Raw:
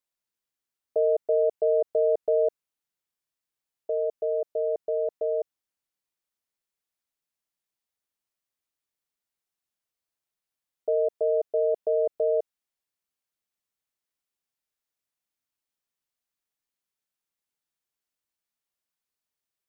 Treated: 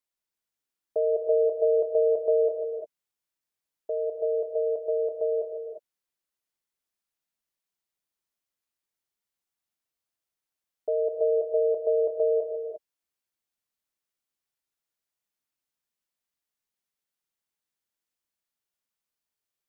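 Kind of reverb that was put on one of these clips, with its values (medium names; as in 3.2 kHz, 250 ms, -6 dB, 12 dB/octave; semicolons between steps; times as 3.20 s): gated-style reverb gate 380 ms rising, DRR 3.5 dB; trim -2 dB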